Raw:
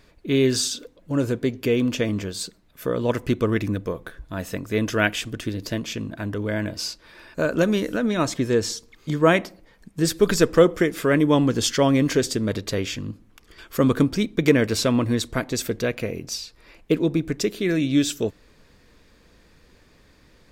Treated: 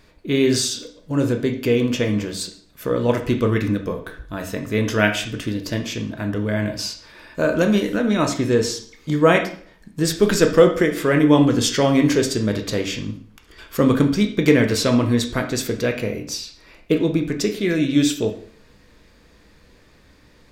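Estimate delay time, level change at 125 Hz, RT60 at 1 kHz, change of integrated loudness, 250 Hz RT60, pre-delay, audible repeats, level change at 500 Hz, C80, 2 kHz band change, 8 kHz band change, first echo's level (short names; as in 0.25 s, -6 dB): none, +3.0 dB, 0.50 s, +3.0 dB, 0.50 s, 6 ms, none, +3.0 dB, 14.0 dB, +3.0 dB, +2.0 dB, none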